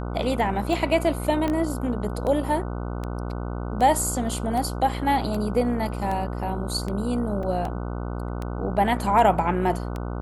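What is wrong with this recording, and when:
buzz 60 Hz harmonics 25 -30 dBFS
tick 78 rpm
1.48 pop -14 dBFS
7.43 gap 3.4 ms

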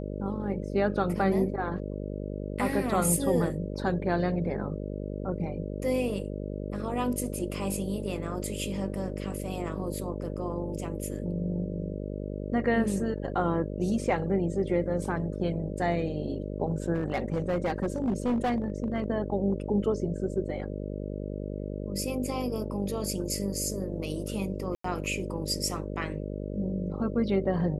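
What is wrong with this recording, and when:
buzz 50 Hz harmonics 12 -35 dBFS
16.94–19.04 clipped -23 dBFS
24.75–24.84 gap 94 ms

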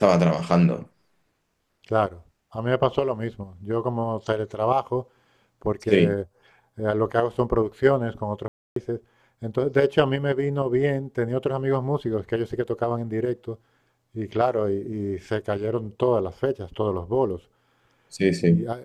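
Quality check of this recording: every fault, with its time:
8.48–8.76 gap 0.283 s

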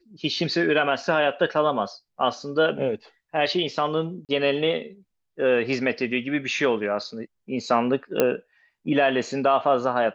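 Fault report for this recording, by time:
4.25–4.29 gap 38 ms
8.2 pop -6 dBFS

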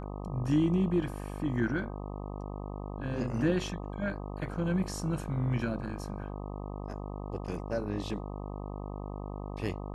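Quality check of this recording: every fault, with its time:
buzz 50 Hz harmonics 25 -39 dBFS

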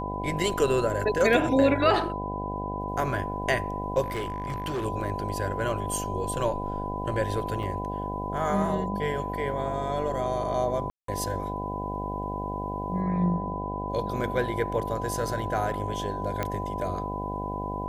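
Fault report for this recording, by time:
buzz 50 Hz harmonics 16 -34 dBFS
tone 1000 Hz -33 dBFS
4.03–4.86 clipped -26.5 dBFS
7.63 gap 3.2 ms
10.9–11.08 gap 0.183 s
16.43 pop -14 dBFS

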